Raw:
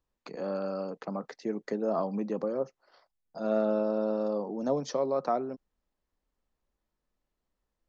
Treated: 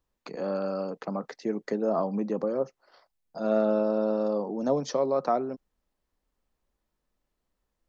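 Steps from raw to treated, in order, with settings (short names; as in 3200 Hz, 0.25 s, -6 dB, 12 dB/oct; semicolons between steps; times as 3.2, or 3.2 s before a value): 1.88–2.48 dynamic EQ 3400 Hz, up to -5 dB, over -50 dBFS, Q 0.79; gain +3 dB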